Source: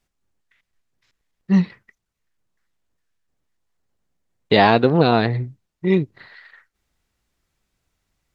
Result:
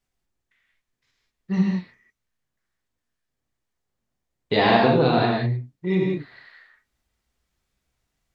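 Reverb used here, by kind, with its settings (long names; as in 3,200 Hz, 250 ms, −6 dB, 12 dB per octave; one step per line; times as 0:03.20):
reverb whose tail is shaped and stops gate 220 ms flat, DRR −3 dB
level −7.5 dB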